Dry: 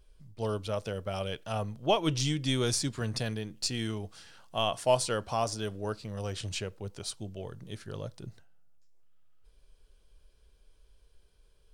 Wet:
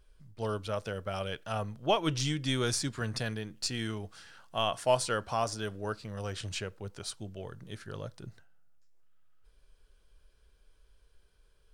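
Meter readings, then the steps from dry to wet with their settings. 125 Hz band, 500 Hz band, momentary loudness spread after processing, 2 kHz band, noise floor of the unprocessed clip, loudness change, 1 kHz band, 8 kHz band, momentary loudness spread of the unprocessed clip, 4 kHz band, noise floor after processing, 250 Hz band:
-2.0 dB, -1.5 dB, 15 LU, +2.0 dB, -63 dBFS, -1.0 dB, 0.0 dB, -2.0 dB, 14 LU, -1.5 dB, -65 dBFS, -2.0 dB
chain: bell 1500 Hz +6 dB 0.93 oct; gain -2 dB

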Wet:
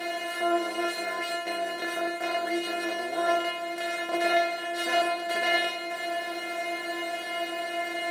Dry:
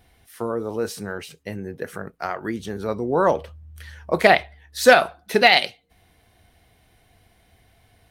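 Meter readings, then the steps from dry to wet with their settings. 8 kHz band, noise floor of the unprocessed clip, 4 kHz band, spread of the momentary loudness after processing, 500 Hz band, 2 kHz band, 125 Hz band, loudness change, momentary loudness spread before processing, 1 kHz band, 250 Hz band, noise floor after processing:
-4.5 dB, -60 dBFS, -4.5 dB, 7 LU, -6.5 dB, -6.0 dB, under -20 dB, -8.5 dB, 19 LU, -5.5 dB, -4.0 dB, -35 dBFS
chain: per-bin compression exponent 0.2; HPF 120 Hz 24 dB/oct; metallic resonator 340 Hz, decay 0.44 s, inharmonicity 0.002

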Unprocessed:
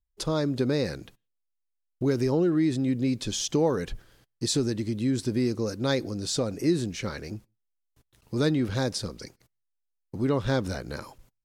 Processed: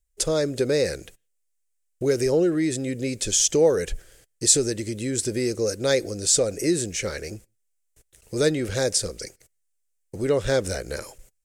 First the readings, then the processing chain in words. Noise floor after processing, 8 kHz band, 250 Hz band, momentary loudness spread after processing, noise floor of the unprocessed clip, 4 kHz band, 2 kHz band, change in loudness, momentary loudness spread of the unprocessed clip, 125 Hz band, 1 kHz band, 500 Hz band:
-73 dBFS, +13.5 dB, -1.0 dB, 15 LU, -79 dBFS, +5.0 dB, +5.0 dB, +4.0 dB, 14 LU, -2.0 dB, -0.5 dB, +6.0 dB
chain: graphic EQ 125/250/500/1000/2000/4000/8000 Hz -7/-10/+6/-12/+3/-6/+11 dB; gain +6.5 dB

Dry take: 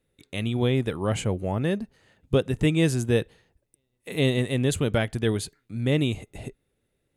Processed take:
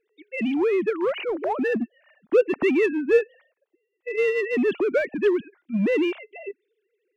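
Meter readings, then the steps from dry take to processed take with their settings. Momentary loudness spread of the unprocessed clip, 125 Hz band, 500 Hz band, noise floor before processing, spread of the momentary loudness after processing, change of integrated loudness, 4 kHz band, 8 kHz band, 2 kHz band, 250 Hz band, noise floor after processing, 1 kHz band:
13 LU, under -15 dB, +6.0 dB, -76 dBFS, 14 LU, +2.0 dB, n/a, under -15 dB, +4.5 dB, +1.0 dB, -78 dBFS, +3.5 dB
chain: sine-wave speech; in parallel at -5.5 dB: overloaded stage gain 27.5 dB

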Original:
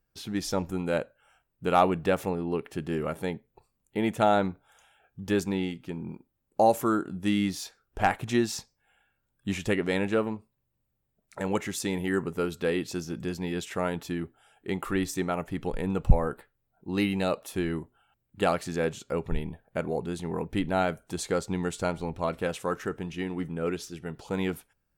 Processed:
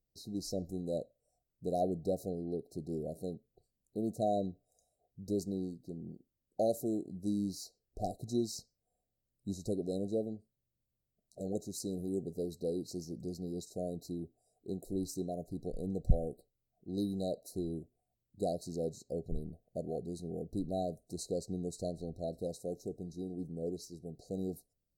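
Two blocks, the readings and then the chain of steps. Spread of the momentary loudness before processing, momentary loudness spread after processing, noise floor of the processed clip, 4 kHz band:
12 LU, 11 LU, under -85 dBFS, -12.5 dB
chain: brick-wall FIR band-stop 760–3800 Hz; gain -8 dB

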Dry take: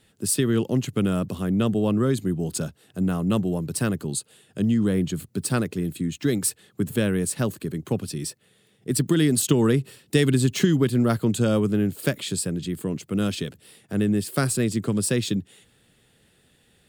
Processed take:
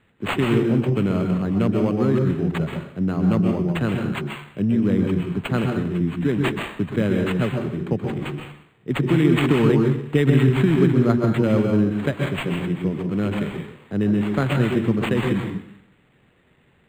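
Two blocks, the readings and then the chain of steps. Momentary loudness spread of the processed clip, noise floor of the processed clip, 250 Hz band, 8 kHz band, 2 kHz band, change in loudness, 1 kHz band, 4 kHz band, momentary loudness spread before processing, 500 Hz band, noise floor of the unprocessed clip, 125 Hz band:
10 LU, -59 dBFS, +3.5 dB, under -15 dB, +4.5 dB, +3.0 dB, +5.0 dB, -2.0 dB, 9 LU, +3.5 dB, -62 dBFS, +4.0 dB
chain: plate-style reverb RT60 0.65 s, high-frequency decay 1×, pre-delay 0.115 s, DRR 2.5 dB; decimation joined by straight lines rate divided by 8×; gain +1 dB

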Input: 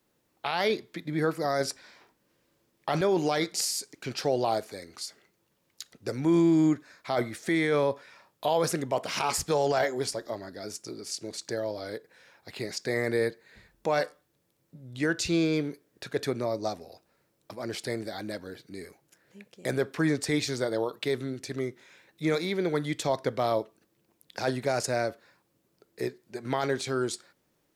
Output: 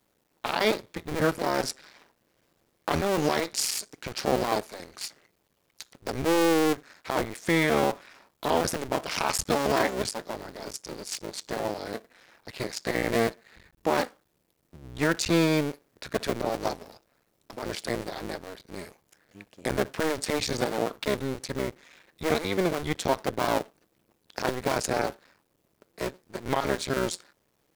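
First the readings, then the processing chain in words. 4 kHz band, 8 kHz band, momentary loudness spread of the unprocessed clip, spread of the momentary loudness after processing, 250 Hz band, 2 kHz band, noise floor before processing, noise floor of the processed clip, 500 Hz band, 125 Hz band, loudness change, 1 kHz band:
+2.5 dB, +2.0 dB, 14 LU, 14 LU, -0.5 dB, +2.5 dB, -73 dBFS, -72 dBFS, +0.5 dB, 0.0 dB, +1.0 dB, +3.0 dB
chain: cycle switcher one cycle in 2, muted; gain +4 dB

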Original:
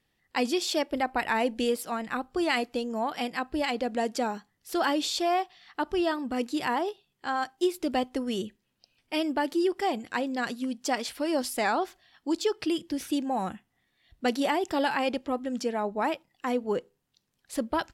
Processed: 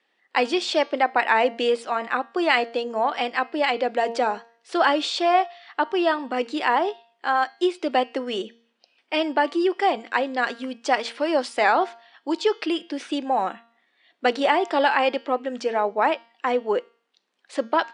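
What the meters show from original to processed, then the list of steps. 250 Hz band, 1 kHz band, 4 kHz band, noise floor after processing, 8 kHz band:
+1.0 dB, +8.0 dB, +5.0 dB, -70 dBFS, -3.5 dB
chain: brick-wall FIR band-pass 170–10000 Hz; three-band isolator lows -17 dB, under 350 Hz, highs -14 dB, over 4000 Hz; de-hum 231.9 Hz, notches 29; gain +8.5 dB

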